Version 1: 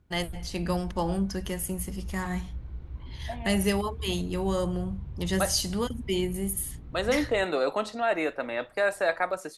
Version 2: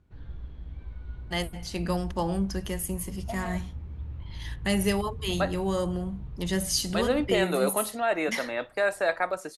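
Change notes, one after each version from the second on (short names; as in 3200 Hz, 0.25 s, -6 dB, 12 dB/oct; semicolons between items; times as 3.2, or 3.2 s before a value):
first voice: entry +1.20 s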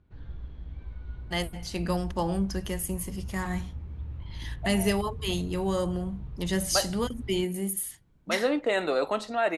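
second voice: entry +1.35 s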